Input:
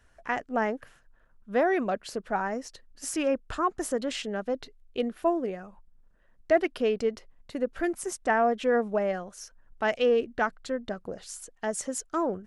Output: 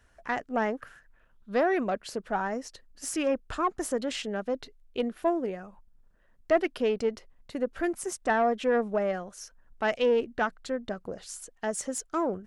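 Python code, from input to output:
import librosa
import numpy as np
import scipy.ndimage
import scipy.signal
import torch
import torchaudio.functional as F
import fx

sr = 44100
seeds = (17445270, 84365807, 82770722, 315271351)

y = fx.diode_clip(x, sr, knee_db=-13.5)
y = fx.peak_eq(y, sr, hz=fx.line((0.73, 1100.0), (1.59, 4800.0)), db=13.0, octaves=0.37, at=(0.73, 1.59), fade=0.02)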